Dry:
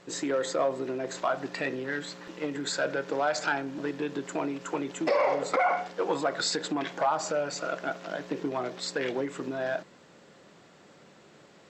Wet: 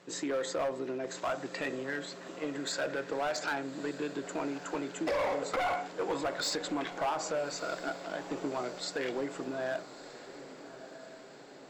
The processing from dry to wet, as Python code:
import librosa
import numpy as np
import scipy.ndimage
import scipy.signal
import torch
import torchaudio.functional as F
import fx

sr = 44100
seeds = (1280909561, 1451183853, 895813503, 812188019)

p1 = scipy.signal.sosfilt(scipy.signal.butter(2, 120.0, 'highpass', fs=sr, output='sos'), x)
p2 = np.clip(p1, -10.0 ** (-24.0 / 20.0), 10.0 ** (-24.0 / 20.0))
p3 = p2 + fx.echo_diffused(p2, sr, ms=1242, feedback_pct=58, wet_db=-14.0, dry=0)
y = p3 * librosa.db_to_amplitude(-3.5)